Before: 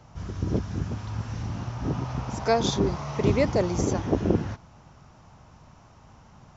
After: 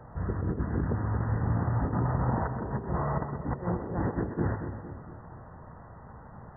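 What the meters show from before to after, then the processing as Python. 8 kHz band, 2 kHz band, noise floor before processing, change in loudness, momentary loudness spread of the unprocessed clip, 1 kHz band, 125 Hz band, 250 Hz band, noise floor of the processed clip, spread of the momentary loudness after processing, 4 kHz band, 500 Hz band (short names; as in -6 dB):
n/a, -4.0 dB, -53 dBFS, -3.5 dB, 10 LU, -1.5 dB, -0.5 dB, -4.5 dB, -48 dBFS, 20 LU, under -40 dB, -8.5 dB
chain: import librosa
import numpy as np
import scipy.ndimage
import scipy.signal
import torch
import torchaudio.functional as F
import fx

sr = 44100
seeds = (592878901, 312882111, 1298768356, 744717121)

y = fx.peak_eq(x, sr, hz=470.0, db=5.0, octaves=0.35)
y = fx.hum_notches(y, sr, base_hz=50, count=7)
y = fx.over_compress(y, sr, threshold_db=-30.0, ratio=-0.5)
y = fx.brickwall_lowpass(y, sr, high_hz=2000.0)
y = fx.echo_split(y, sr, split_hz=530.0, low_ms=229, high_ms=129, feedback_pct=52, wet_db=-8.0)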